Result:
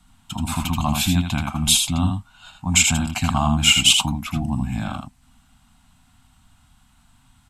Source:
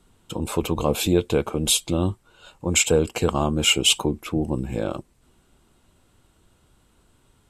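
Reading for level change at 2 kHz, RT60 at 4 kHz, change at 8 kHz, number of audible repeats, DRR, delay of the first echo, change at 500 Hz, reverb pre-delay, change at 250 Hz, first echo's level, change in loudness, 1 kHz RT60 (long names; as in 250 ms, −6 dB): +4.5 dB, no reverb audible, +4.0 dB, 1, no reverb audible, 80 ms, −15.0 dB, no reverb audible, +1.5 dB, −5.5 dB, +3.0 dB, no reverb audible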